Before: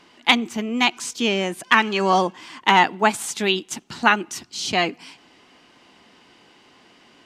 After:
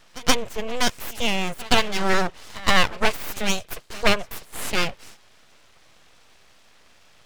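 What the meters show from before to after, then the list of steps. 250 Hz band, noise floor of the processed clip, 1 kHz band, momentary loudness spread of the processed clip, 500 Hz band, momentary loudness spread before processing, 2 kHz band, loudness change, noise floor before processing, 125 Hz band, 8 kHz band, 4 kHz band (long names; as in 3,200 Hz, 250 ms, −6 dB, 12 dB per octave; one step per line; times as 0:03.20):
−4.5 dB, −54 dBFS, −6.5 dB, 9 LU, −2.0 dB, 9 LU, −4.0 dB, −3.5 dB, −54 dBFS, +0.5 dB, 0.0 dB, −1.5 dB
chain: tape wow and flutter 28 cents
echo ahead of the sound 123 ms −20 dB
full-wave rectification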